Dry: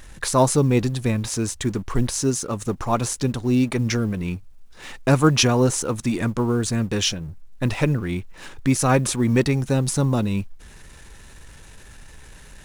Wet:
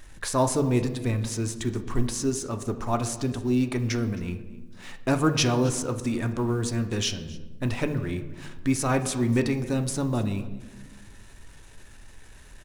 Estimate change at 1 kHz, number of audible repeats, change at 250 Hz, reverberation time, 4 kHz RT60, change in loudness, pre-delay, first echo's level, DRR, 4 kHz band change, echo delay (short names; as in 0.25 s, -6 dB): -5.0 dB, 1, -4.5 dB, 1.2 s, 0.70 s, -5.0 dB, 3 ms, -21.0 dB, 7.0 dB, -5.5 dB, 0.266 s